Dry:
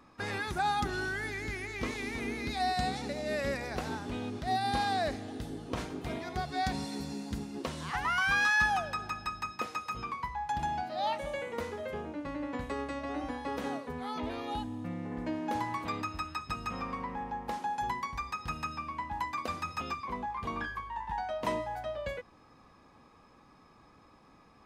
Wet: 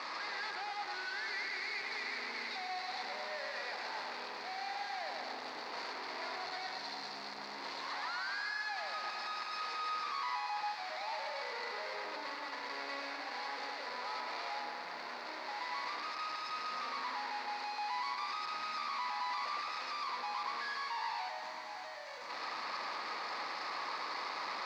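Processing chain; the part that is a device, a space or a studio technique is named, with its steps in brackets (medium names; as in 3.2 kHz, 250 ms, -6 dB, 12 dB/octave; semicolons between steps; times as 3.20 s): 5.58–6.06 s: high-pass 110 Hz 6 dB/octave; home computer beeper (one-bit comparator; cabinet simulation 660–4800 Hz, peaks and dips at 970 Hz +5 dB, 2 kHz +5 dB, 3.1 kHz -7 dB, 4.5 kHz +10 dB); 21.29–22.30 s: time-frequency box 330–5700 Hz -6 dB; filtered feedback delay 111 ms, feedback 65%, low-pass 2.8 kHz, level -3.5 dB; bit-crushed delay 365 ms, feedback 80%, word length 10-bit, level -14.5 dB; trim -6.5 dB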